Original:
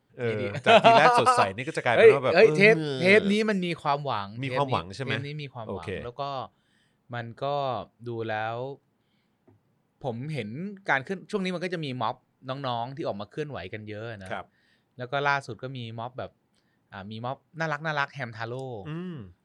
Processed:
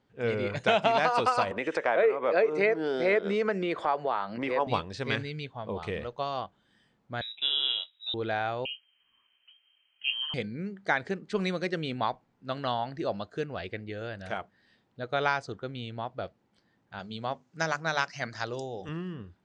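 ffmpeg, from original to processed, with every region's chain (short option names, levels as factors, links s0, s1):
-filter_complex "[0:a]asettb=1/sr,asplit=3[s0][s1][s2];[s0]atrim=end=1.514[s3];[s1]atrim=start=1.51:end=4.67,asetpts=PTS-STARTPTS,afade=t=in:d=0.004:c=qsin,afade=t=out:st=3.156:d=0.004:c=qsin,acrossover=split=260 2000:gain=0.0708 1 0.2[s4][s5][s6];[s4][s5][s6]amix=inputs=3:normalize=0,acompressor=mode=upward:threshold=0.0891:ratio=2.5:attack=3.2:release=140:knee=2.83:detection=peak[s7];[s2]atrim=start=4.666[s8];[s3][s7]acrossfade=d=0.004:c1=hsin:c2=qsin[s9];[s9][s8]acrossfade=d=0.004:c1=qsin:c2=hsin,asettb=1/sr,asplit=3[s10][s11][s12];[s10]atrim=end=7.214[s13];[s11]atrim=start=7.21:end=8.14,asetpts=PTS-STARTPTS,afade=t=in:d=0.004:c=qsin,afade=t=out:st=0.926:d=0.004:c=qsin,asplit=2[s14][s15];[s15]adelay=22,volume=0.266[s16];[s14][s16]amix=inputs=2:normalize=0,atrim=end_sample=41013,lowpass=f=3400:t=q:w=0.5098,lowpass=f=3400:t=q:w=0.6013,lowpass=f=3400:t=q:w=0.9,lowpass=f=3400:t=q:w=2.563,afreqshift=-4000[s17];[s12]atrim=start=8.136[s18];[s13][s17]acrossfade=d=0.004:c1=hsin:c2=qsin[s19];[s19][s18]acrossfade=d=0.004:c1=qsin:c2=hsin,asettb=1/sr,asplit=3[s20][s21][s22];[s20]atrim=end=8.654[s23];[s21]atrim=start=8.65:end=10.34,asetpts=PTS-STARTPTS,afade=t=in:d=0.004:c=qsin,afade=t=out:st=1.686:d=0.004:c=qsin,asplit=2[s24][s25];[s25]adelay=16,volume=0.398[s26];[s24][s26]amix=inputs=2:normalize=0,atrim=end_sample=74529,lowpass=f=2800:t=q:w=0.5098,lowpass=f=2800:t=q:w=0.6013,lowpass=f=2800:t=q:w=0.9,lowpass=f=2800:t=q:w=2.563,afreqshift=-3300[s27];[s22]atrim=start=10.336[s28];[s23][s27]acrossfade=d=0.004:c1=hsin:c2=qsin[s29];[s29][s28]acrossfade=d=0.004:c1=qsin:c2=hsin,asettb=1/sr,asplit=3[s30][s31][s32];[s30]atrim=end=16.994[s33];[s31]atrim=start=16.99:end=18.89,asetpts=PTS-STARTPTS,afade=t=in:d=0.004:c=qsin,afade=t=out:st=1.896:d=0.004:c=qsin,highpass=98,equalizer=f=6400:t=o:w=0.89:g=12,bandreject=f=50:t=h:w=6,bandreject=f=100:t=h:w=6,bandreject=f=150:t=h:w=6,bandreject=f=200:t=h:w=6,bandreject=f=250:t=h:w=6,bandreject=f=300:t=h:w=6,bandreject=f=350:t=h:w=6[s34];[s32]atrim=start=18.886[s35];[s33][s34]acrossfade=d=0.004:c1=hsin:c2=qsin[s36];[s36][s35]acrossfade=d=0.004:c1=qsin:c2=hsin,lowpass=f=7300:w=0.5412,lowpass=f=7300:w=1.3066,equalizer=f=130:t=o:w=0.5:g=-4,acompressor=threshold=0.0891:ratio=5"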